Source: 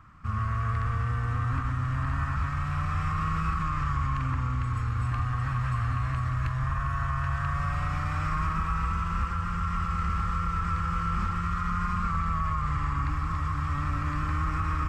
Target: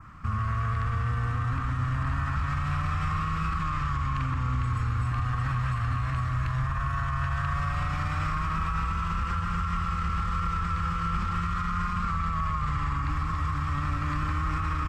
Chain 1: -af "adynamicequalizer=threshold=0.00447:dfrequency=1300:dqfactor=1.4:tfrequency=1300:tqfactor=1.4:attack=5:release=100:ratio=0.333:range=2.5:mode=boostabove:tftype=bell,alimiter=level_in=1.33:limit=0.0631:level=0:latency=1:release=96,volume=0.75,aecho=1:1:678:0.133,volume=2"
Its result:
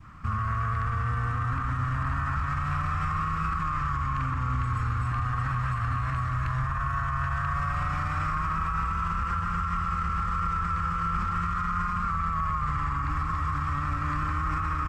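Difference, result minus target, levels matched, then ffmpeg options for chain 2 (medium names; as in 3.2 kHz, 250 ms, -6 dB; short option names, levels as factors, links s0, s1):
4 kHz band -4.5 dB
-af "adynamicequalizer=threshold=0.00447:dfrequency=3600:dqfactor=1.4:tfrequency=3600:tqfactor=1.4:attack=5:release=100:ratio=0.333:range=2.5:mode=boostabove:tftype=bell,alimiter=level_in=1.33:limit=0.0631:level=0:latency=1:release=96,volume=0.75,aecho=1:1:678:0.133,volume=2"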